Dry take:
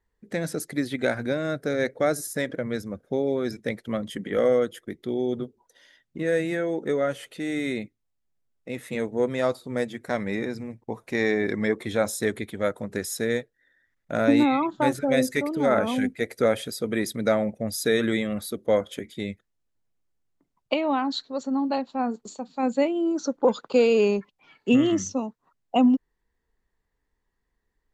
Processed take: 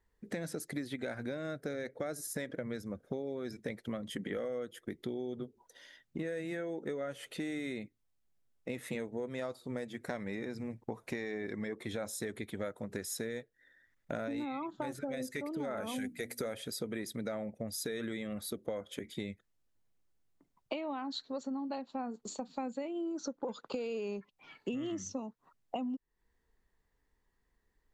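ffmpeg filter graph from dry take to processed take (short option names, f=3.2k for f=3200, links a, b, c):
-filter_complex "[0:a]asettb=1/sr,asplit=3[a][b][c];[a]atrim=end=15.774[d];[b]atrim=start=15.77:end=16.54,asetpts=PTS-STARTPTS,afade=t=in:d=0.004:c=qsin,afade=t=out:st=0.766:d=0.004:c=qsin,aemphasis=mode=production:type=50kf,bandreject=f=60:t=h:w=6,bandreject=f=120:t=h:w=6,bandreject=f=180:t=h:w=6,bandreject=f=240:t=h:w=6,bandreject=f=300:t=h:w=6[e];[c]atrim=start=16.536[f];[d][e]acrossfade=d=0.004:c1=hsin:c2=qsin[g];[g][f]acrossfade=d=0.004:c1=qsin:c2=hsin,alimiter=limit=-15dB:level=0:latency=1:release=11,acompressor=threshold=-35dB:ratio=10"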